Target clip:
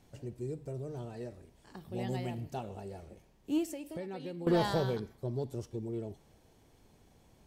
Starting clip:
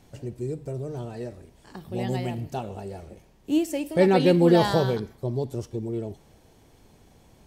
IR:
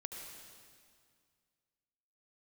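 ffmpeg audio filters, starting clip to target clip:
-filter_complex "[0:a]asettb=1/sr,asplit=3[a][b][c];[a]atrim=end=3.644[d];[b]atrim=start=3.64:end=4.47,asetpts=PTS-STARTPTS,afade=t=in:d=0.004:c=qsin,afade=t=out:st=0.826:d=0.004:c=qsin,acompressor=threshold=-31dB:ratio=10[e];[c]atrim=start=4.466[f];[d][e]acrossfade=d=0.004:c1=hsin:c2=qsin[g];[g][f]acrossfade=d=0.004:c1=qsin:c2=hsin,asoftclip=type=tanh:threshold=-12.5dB,volume=-7.5dB"

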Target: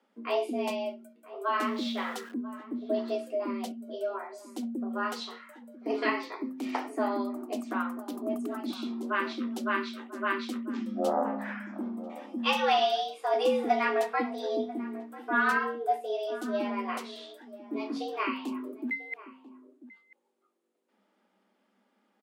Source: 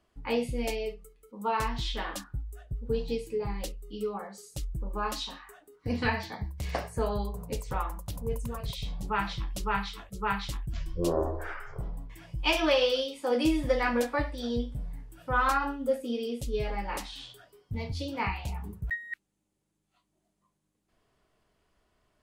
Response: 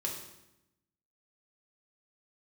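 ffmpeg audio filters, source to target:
-filter_complex "[0:a]asettb=1/sr,asplit=3[a][b][c];[a]atrim=end=1.624[d];[b]atrim=start=1.62:end=2.34,asetpts=PTS-STARTPTS,afade=t=in:d=0.004:c=qsin,afade=t=out:st=0.716:d=0.004:c=qsin,aeval=exprs='val(0)+0.5*0.00668*sgn(val(0))':c=same[e];[c]atrim=start=2.336[f];[d][e]acrossfade=d=0.004:c1=hsin:c2=qsin[g];[g][f]acrossfade=d=0.004:c1=qsin:c2=hsin,afreqshift=190,bass=f=250:g=-1,treble=f=4k:g=-7,asplit=2[h][i];[i]adelay=991.3,volume=-16dB,highshelf=f=4k:g=-22.3[j];[h][j]amix=inputs=2:normalize=0"

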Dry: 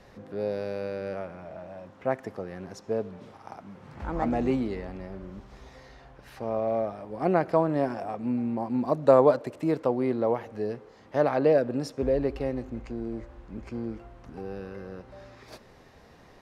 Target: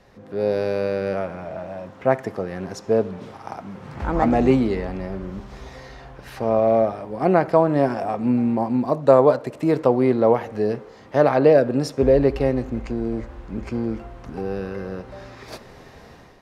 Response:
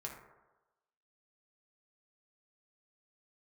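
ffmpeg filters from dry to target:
-filter_complex "[0:a]dynaudnorm=f=100:g=7:m=10dB,asplit=2[a][b];[1:a]atrim=start_sample=2205,afade=t=out:st=0.14:d=0.01,atrim=end_sample=6615[c];[b][c]afir=irnorm=-1:irlink=0,volume=-9.5dB[d];[a][d]amix=inputs=2:normalize=0,volume=-2dB"

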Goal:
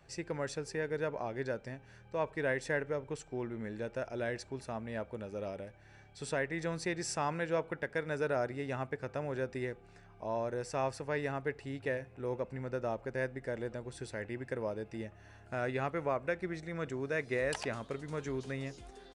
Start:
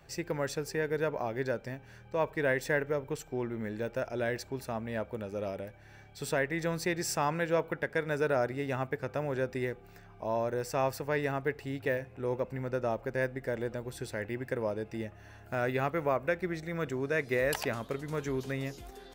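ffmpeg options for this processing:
-af "aresample=22050,aresample=44100,volume=-4dB"

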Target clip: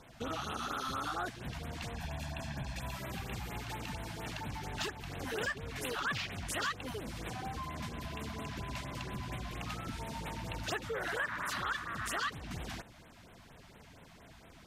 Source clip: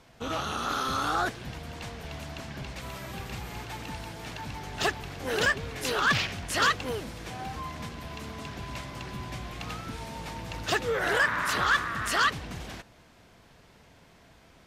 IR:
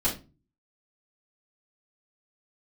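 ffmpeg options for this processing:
-filter_complex "[0:a]asettb=1/sr,asplit=3[a][b][c];[a]atrim=end=1.944[d];[b]atrim=start=1.94:end=2.96,asetpts=PTS-STARTPTS,afade=t=in:d=0.004:c=qsin,afade=t=out:st=1.016:d=0.004:c=qsin,aecho=1:1:1.2:0.55,atrim=end_sample=44982[e];[c]atrim=start=2.956[f];[d][e]acrossfade=d=0.004:c1=hsin:c2=qsin[g];[g][f]acrossfade=d=0.004:c1=qsin:c2=hsin,acompressor=threshold=-39dB:ratio=2.5,afftfilt=real='re*(1-between(b*sr/1024,380*pow(6000/380,0.5+0.5*sin(2*PI*4.3*pts/sr))/1.41,380*pow(6000/380,0.5+0.5*sin(2*PI*4.3*pts/sr))*1.41))':imag='im*(1-between(b*sr/1024,380*pow(6000/380,0.5+0.5*sin(2*PI*4.3*pts/sr))/1.41,380*pow(6000/380,0.5+0.5*sin(2*PI*4.3*pts/sr))*1.41))':win_size=1024:overlap=0.75,volume=1dB"

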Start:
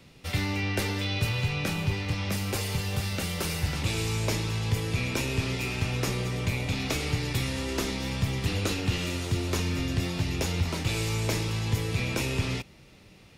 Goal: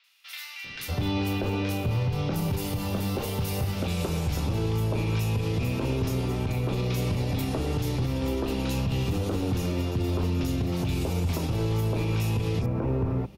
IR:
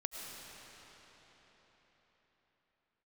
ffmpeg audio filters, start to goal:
-filter_complex "[0:a]bandreject=f=50:t=h:w=6,bandreject=f=100:t=h:w=6,bandreject=f=150:t=h:w=6,bandreject=f=200:t=h:w=6,acrossover=split=1600|4800[a][b][c];[c]adelay=40[d];[a]adelay=640[e];[e][b][d]amix=inputs=3:normalize=0,acontrast=50,equalizer=f=2k:t=o:w=1:g=-9,equalizer=f=4k:t=o:w=1:g=-3,equalizer=f=8k:t=o:w=1:g=-10,alimiter=limit=-19dB:level=0:latency=1:release=60"

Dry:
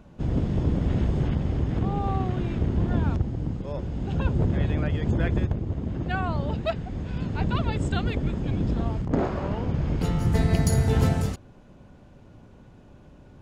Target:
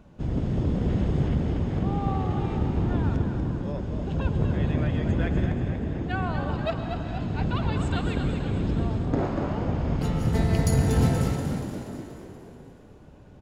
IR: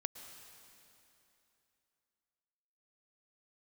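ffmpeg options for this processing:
-filter_complex "[0:a]asplit=8[a][b][c][d][e][f][g][h];[b]adelay=239,afreqshift=50,volume=-7.5dB[i];[c]adelay=478,afreqshift=100,volume=-12.7dB[j];[d]adelay=717,afreqshift=150,volume=-17.9dB[k];[e]adelay=956,afreqshift=200,volume=-23.1dB[l];[f]adelay=1195,afreqshift=250,volume=-28.3dB[m];[g]adelay=1434,afreqshift=300,volume=-33.5dB[n];[h]adelay=1673,afreqshift=350,volume=-38.7dB[o];[a][i][j][k][l][m][n][o]amix=inputs=8:normalize=0[p];[1:a]atrim=start_sample=2205[q];[p][q]afir=irnorm=-1:irlink=0"

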